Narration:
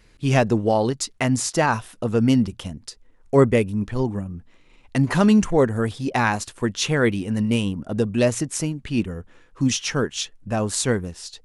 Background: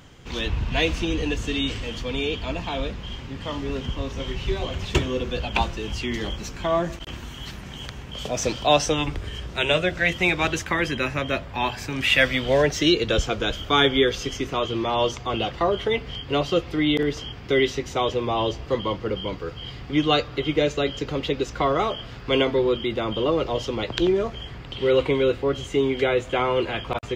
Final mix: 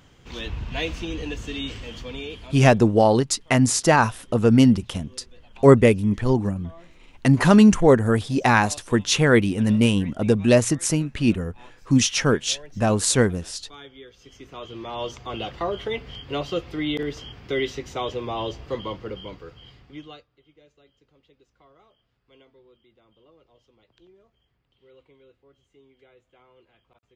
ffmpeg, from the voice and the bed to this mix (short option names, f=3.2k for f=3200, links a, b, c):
-filter_complex "[0:a]adelay=2300,volume=3dB[a];[1:a]volume=15dB,afade=t=out:st=2.01:d=0.78:silence=0.1,afade=t=in:st=14.15:d=1.34:silence=0.0944061,afade=t=out:st=18.81:d=1.45:silence=0.0316228[b];[a][b]amix=inputs=2:normalize=0"